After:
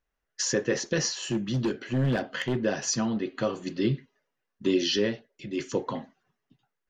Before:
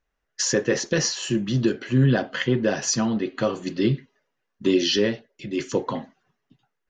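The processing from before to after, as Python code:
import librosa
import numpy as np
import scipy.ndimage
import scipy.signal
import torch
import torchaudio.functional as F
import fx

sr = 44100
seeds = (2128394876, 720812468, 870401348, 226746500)

y = fx.clip_hard(x, sr, threshold_db=-17.0, at=(1.13, 2.64))
y = y * librosa.db_to_amplitude(-4.5)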